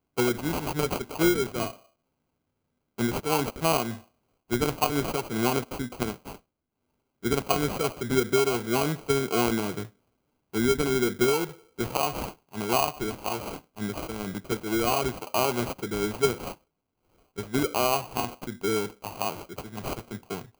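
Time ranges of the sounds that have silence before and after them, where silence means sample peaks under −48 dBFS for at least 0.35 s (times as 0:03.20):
0:02.98–0:04.04
0:04.50–0:06.38
0:07.23–0:09.90
0:10.54–0:16.55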